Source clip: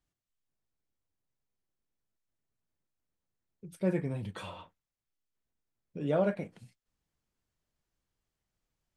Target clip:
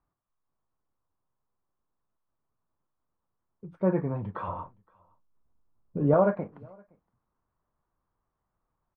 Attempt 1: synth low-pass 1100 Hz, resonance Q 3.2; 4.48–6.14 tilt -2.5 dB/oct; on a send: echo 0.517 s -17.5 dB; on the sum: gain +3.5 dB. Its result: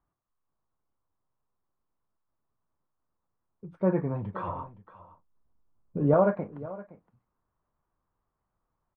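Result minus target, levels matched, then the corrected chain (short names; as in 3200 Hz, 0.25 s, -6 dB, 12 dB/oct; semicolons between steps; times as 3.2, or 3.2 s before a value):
echo-to-direct +11.5 dB
synth low-pass 1100 Hz, resonance Q 3.2; 4.48–6.14 tilt -2.5 dB/oct; on a send: echo 0.517 s -29 dB; on the sum: gain +3.5 dB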